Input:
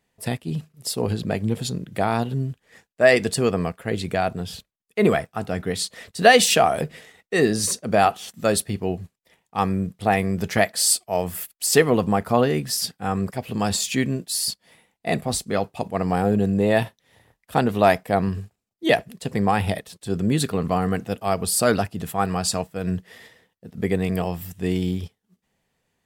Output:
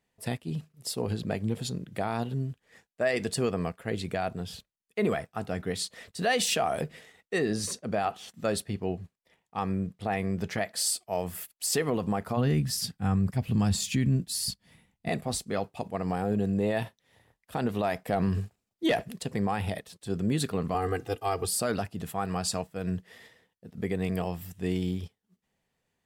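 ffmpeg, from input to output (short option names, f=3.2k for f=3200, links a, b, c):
-filter_complex "[0:a]asettb=1/sr,asplit=3[a][b][c];[a]atrim=end=7.384[d];[b]atrim=start=7.38:end=10.71,asetpts=PTS-STARTPTS,afade=t=in:d=0.004:c=qsin,afade=t=out:st=3.326:d=0.004:c=qsin,highshelf=f=6.8k:g=-7[e];[c]atrim=start=10.706[f];[d][e]acrossfade=d=0.004:c1=hsin:c2=qsin[g];[g][f]acrossfade=d=0.004:c1=qsin:c2=hsin,asplit=3[h][i][j];[h]afade=t=out:st=12.36:d=0.02[k];[i]asubboost=boost=6.5:cutoff=200,afade=t=in:st=12.36:d=0.02,afade=t=out:st=15.08:d=0.02[l];[j]afade=t=in:st=15.08:d=0.02[m];[k][l][m]amix=inputs=3:normalize=0,asettb=1/sr,asplit=3[n][o][p];[n]atrim=end=18.064[q];[o]atrim=start=18.06:end=19.23,asetpts=PTS-STARTPTS,afade=t=in:d=0.004:c=qsin,afade=t=out:st=1.166:d=0.004:c=qsin,acontrast=84[r];[p]atrim=start=19.226[s];[q][r]acrossfade=d=0.004:c1=hsin:c2=qsin[t];[t][s]acrossfade=d=0.004:c1=qsin:c2=hsin,asettb=1/sr,asplit=3[u][v][w];[u]atrim=end=20.744[x];[v]atrim=start=20.74:end=21.47,asetpts=PTS-STARTPTS,afade=t=in:d=0.004:c=qsin,afade=t=out:st=0.726:d=0.004:c=qsin,aecho=1:1:2.5:0.96,atrim=end_sample=32193[y];[w]atrim=start=21.466[z];[x][y]acrossfade=d=0.004:c1=hsin:c2=qsin[aa];[aa][z]acrossfade=d=0.004:c1=qsin:c2=hsin,highshelf=f=12k:g=-3.5,alimiter=limit=-11.5dB:level=0:latency=1:release=71,volume=-6dB"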